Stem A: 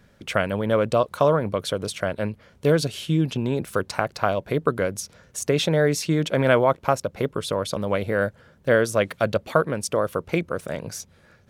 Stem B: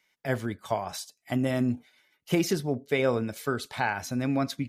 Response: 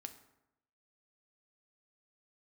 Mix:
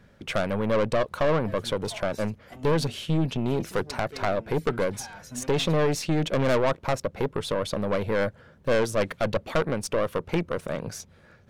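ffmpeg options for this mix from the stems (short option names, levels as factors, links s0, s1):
-filter_complex "[0:a]highshelf=f=4500:g=-7.5,aeval=exprs='(tanh(11.2*val(0)+0.45)-tanh(0.45))/11.2':c=same,volume=1.33,asplit=2[s0][s1];[1:a]asoftclip=type=tanh:threshold=0.0501,asplit=2[s2][s3];[s3]adelay=4.2,afreqshift=-2.7[s4];[s2][s4]amix=inputs=2:normalize=1,adelay=1200,volume=0.562[s5];[s1]apad=whole_len=259699[s6];[s5][s6]sidechaincompress=threshold=0.0631:ratio=8:attack=16:release=895[s7];[s0][s7]amix=inputs=2:normalize=0"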